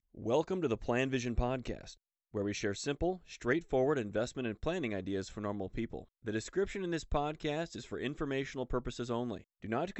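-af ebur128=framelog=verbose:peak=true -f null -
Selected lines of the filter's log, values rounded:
Integrated loudness:
  I:         -36.2 LUFS
  Threshold: -46.3 LUFS
Loudness range:
  LRA:         2.4 LU
  Threshold: -56.4 LUFS
  LRA low:   -37.7 LUFS
  LRA high:  -35.3 LUFS
True peak:
  Peak:      -18.0 dBFS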